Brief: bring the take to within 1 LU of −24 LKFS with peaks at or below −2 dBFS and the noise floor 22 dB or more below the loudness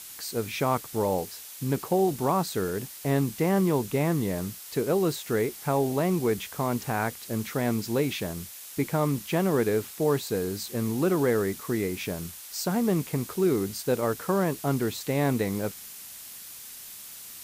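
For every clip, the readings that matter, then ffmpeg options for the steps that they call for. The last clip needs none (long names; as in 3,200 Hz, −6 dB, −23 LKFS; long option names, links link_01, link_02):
background noise floor −43 dBFS; target noise floor −50 dBFS; integrated loudness −27.5 LKFS; sample peak −13.5 dBFS; target loudness −24.0 LKFS
→ -af "afftdn=noise_reduction=7:noise_floor=-43"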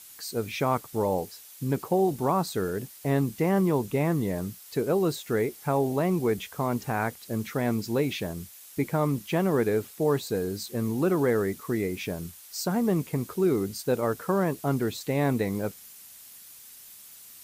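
background noise floor −49 dBFS; target noise floor −50 dBFS
→ -af "afftdn=noise_reduction=6:noise_floor=-49"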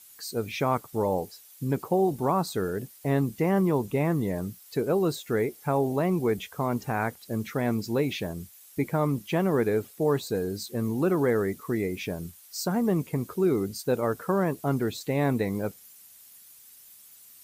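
background noise floor −52 dBFS; integrated loudness −28.0 LKFS; sample peak −13.5 dBFS; target loudness −24.0 LKFS
→ -af "volume=4dB"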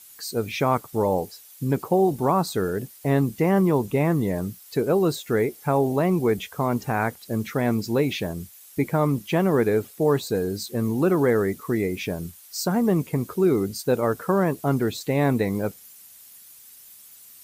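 integrated loudness −24.0 LKFS; sample peak −9.5 dBFS; background noise floor −48 dBFS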